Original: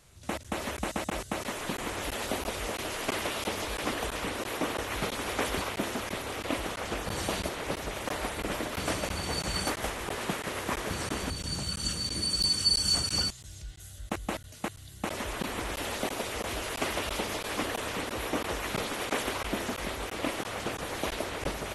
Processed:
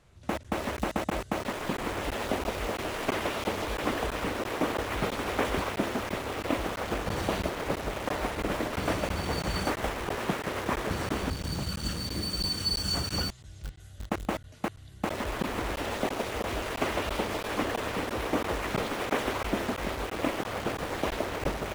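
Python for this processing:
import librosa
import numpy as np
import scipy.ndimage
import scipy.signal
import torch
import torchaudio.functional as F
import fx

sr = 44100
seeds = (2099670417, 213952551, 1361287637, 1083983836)

p1 = fx.lowpass(x, sr, hz=1900.0, slope=6)
p2 = fx.quant_dither(p1, sr, seeds[0], bits=6, dither='none')
y = p1 + F.gain(torch.from_numpy(p2), -6.0).numpy()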